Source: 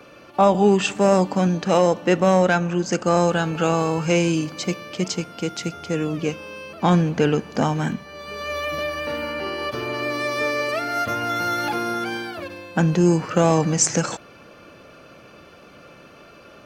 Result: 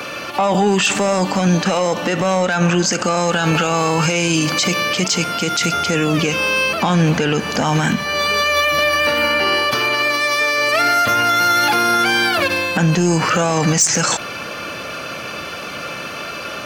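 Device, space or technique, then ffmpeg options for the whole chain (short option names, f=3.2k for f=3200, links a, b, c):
mastering chain: -filter_complex "[0:a]highpass=59,equalizer=f=380:t=o:w=0.77:g=-2,acompressor=threshold=-23dB:ratio=2,asoftclip=type=tanh:threshold=-14dB,tiltshelf=f=930:g=-5,asoftclip=type=hard:threshold=-13.5dB,alimiter=level_in=25.5dB:limit=-1dB:release=50:level=0:latency=1,asettb=1/sr,asplit=3[a][b][c];[a]atrim=end=9.744[d];[b]atrim=start=9.74:end=10.58,asetpts=PTS-STARTPTS,afade=t=in:d=0.004:c=qsin,afade=t=out:st=0.836:d=0.004:c=qsin,lowshelf=f=410:g=-6.5[e];[c]atrim=start=10.576[f];[d][e]acrossfade=d=0.004:c1=hsin:c2=qsin[g];[g][f]acrossfade=d=0.004:c1=qsin:c2=hsin,volume=-7dB"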